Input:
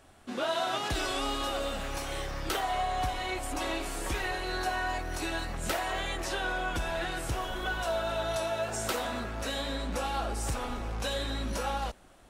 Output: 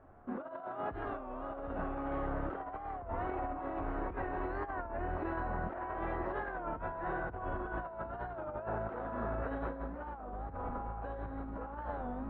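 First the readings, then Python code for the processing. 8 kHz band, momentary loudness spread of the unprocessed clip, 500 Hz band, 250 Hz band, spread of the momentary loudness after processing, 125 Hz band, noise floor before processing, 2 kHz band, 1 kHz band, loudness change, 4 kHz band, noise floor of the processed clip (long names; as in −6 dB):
below −40 dB, 4 LU, −5.5 dB, −2.5 dB, 5 LU, −5.0 dB, −55 dBFS, −10.5 dB, −5.5 dB, −7.0 dB, below −30 dB, −46 dBFS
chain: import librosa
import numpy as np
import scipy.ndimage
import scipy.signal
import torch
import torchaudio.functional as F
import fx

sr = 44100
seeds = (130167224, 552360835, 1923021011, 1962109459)

p1 = scipy.signal.sosfilt(scipy.signal.butter(4, 1400.0, 'lowpass', fs=sr, output='sos'), x)
p2 = fx.comb_fb(p1, sr, f0_hz=90.0, decay_s=1.2, harmonics='all', damping=0.0, mix_pct=80)
p3 = p2 + fx.echo_single(p2, sr, ms=763, db=-7.5, dry=0)
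p4 = fx.rev_schroeder(p3, sr, rt60_s=3.8, comb_ms=32, drr_db=15.0)
p5 = fx.over_compress(p4, sr, threshold_db=-47.0, ratio=-0.5)
p6 = fx.record_warp(p5, sr, rpm=33.33, depth_cents=160.0)
y = F.gain(torch.from_numpy(p6), 9.0).numpy()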